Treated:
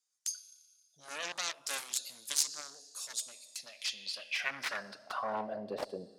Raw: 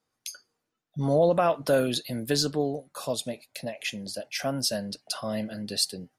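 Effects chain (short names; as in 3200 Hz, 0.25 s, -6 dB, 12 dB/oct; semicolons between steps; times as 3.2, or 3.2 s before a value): Schroeder reverb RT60 1.7 s, combs from 29 ms, DRR 14.5 dB; added harmonics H 4 -11 dB, 7 -9 dB, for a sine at -11 dBFS; band-pass sweep 7000 Hz -> 570 Hz, 3.49–5.73; gain +3 dB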